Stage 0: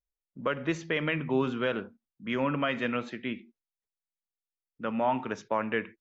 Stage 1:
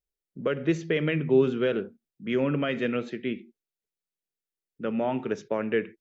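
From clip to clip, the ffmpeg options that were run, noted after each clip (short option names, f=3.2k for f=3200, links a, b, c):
-af "equalizer=f=160:t=o:w=0.67:g=6,equalizer=f=400:t=o:w=0.67:g=9,equalizer=f=1k:t=o:w=0.67:g=-9"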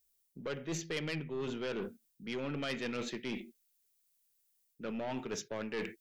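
-af "areverse,acompressor=threshold=-34dB:ratio=8,areverse,aeval=exprs='(tanh(44.7*val(0)+0.3)-tanh(0.3))/44.7':c=same,crystalizer=i=5:c=0,volume=1dB"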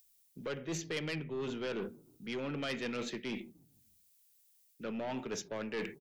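-filter_complex "[0:a]acrossover=split=110|960|1700[a][b][c][d];[a]alimiter=level_in=29dB:limit=-24dB:level=0:latency=1,volume=-29dB[e];[b]asplit=5[f][g][h][i][j];[g]adelay=147,afreqshift=-39,volume=-21.5dB[k];[h]adelay=294,afreqshift=-78,volume=-27dB[l];[i]adelay=441,afreqshift=-117,volume=-32.5dB[m];[j]adelay=588,afreqshift=-156,volume=-38dB[n];[f][k][l][m][n]amix=inputs=5:normalize=0[o];[d]acompressor=mode=upward:threshold=-59dB:ratio=2.5[p];[e][o][c][p]amix=inputs=4:normalize=0"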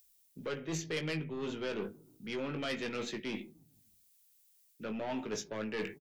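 -filter_complex "[0:a]asplit=2[a][b];[b]adelay=19,volume=-7dB[c];[a][c]amix=inputs=2:normalize=0"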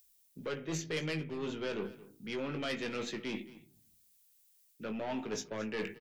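-af "aecho=1:1:223:0.126"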